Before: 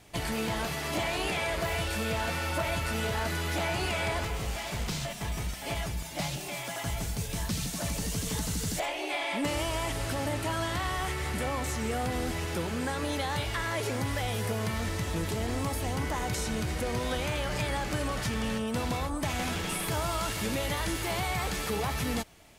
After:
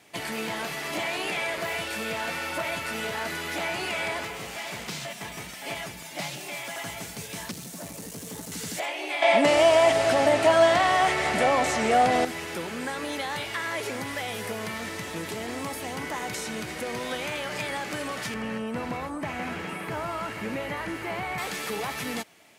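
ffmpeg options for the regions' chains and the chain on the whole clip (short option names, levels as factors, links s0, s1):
-filter_complex "[0:a]asettb=1/sr,asplit=3[s0][s1][s2];[s0]atrim=end=7.514[s3];[s1]atrim=start=7.51:end=8.52,asetpts=PTS-STARTPTS,afade=t=in:d=0.004:c=qsin,afade=t=out:st=1.006:d=0.004:c=qsin,equalizer=f=2600:w=0.46:g=-9.5,aeval=exprs='clip(val(0),-1,0.0178)':c=same[s4];[s2]atrim=start=8.516[s5];[s3][s4]acrossfade=d=0.004:c1=hsin:c2=qsin[s6];[s6][s5]acrossfade=d=0.004:c1=qsin:c2=hsin,asettb=1/sr,asplit=3[s7][s8][s9];[s7]atrim=end=9.224[s10];[s8]atrim=start=9.22:end=12.25,asetpts=PTS-STARTPTS,afade=t=in:d=0.004:c=qsin,afade=t=out:st=3.026:d=0.004:c=qsin,lowpass=8200,equalizer=f=670:t=o:w=0.43:g=13,acontrast=77[s11];[s9]atrim=start=12.246[s12];[s10][s11]acrossfade=d=0.004:c1=hsin:c2=qsin[s13];[s13][s12]acrossfade=d=0.004:c1=qsin:c2=hsin,asettb=1/sr,asplit=3[s14][s15][s16];[s14]atrim=end=18.344[s17];[s15]atrim=start=18.34:end=21.38,asetpts=PTS-STARTPTS,afade=t=in:d=0.004:c=qsin,afade=t=out:st=3.036:d=0.004:c=qsin,bandreject=f=3500:w=12,acrossover=split=2600[s18][s19];[s19]acompressor=threshold=0.00282:ratio=4:attack=1:release=60[s20];[s18][s20]amix=inputs=2:normalize=0,lowshelf=f=150:g=6.5[s21];[s16]atrim=start=21.376[s22];[s17][s21]acrossfade=d=0.004:c1=hsin:c2=qsin[s23];[s23][s22]acrossfade=d=0.004:c1=qsin:c2=hsin,highpass=200,equalizer=f=2100:w=1.5:g=4"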